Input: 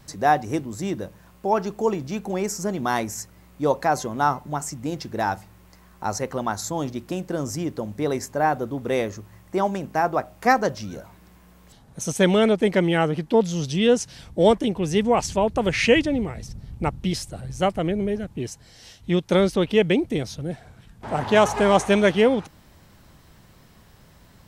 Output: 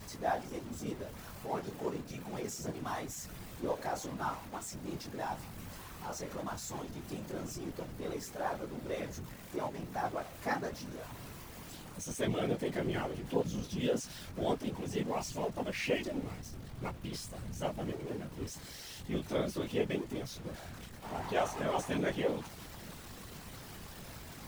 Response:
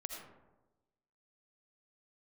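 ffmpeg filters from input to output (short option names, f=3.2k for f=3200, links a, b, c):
-af "aeval=exprs='val(0)+0.5*0.0531*sgn(val(0))':c=same,flanger=delay=17:depth=7.1:speed=0.89,afftfilt=real='hypot(re,im)*cos(2*PI*random(0))':imag='hypot(re,im)*sin(2*PI*random(1))':win_size=512:overlap=0.75,volume=-8dB"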